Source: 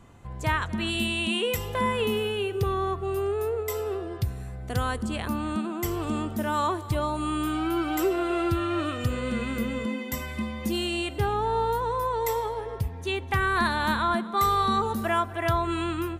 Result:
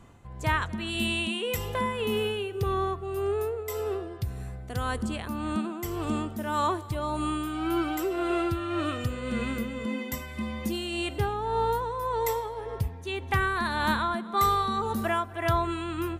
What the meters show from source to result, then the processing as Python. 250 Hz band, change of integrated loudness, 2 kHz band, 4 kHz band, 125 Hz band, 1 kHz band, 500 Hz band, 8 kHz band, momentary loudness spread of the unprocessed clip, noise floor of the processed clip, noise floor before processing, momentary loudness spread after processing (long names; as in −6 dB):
−2.0 dB, −2.0 dB, −2.0 dB, −2.5 dB, −2.0 dB, −2.0 dB, −2.0 dB, −2.0 dB, 7 LU, −41 dBFS, −38 dBFS, 7 LU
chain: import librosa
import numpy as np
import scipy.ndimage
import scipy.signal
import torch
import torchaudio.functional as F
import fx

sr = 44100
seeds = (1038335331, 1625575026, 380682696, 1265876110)

y = x * (1.0 - 0.44 / 2.0 + 0.44 / 2.0 * np.cos(2.0 * np.pi * 1.8 * (np.arange(len(x)) / sr)))